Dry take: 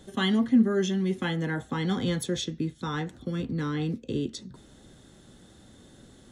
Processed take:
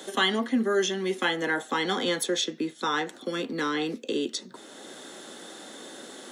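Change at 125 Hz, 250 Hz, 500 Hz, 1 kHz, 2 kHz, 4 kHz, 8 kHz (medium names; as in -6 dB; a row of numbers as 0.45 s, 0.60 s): -12.0 dB, -4.0 dB, +3.5 dB, +7.0 dB, +7.0 dB, +6.5 dB, +6.5 dB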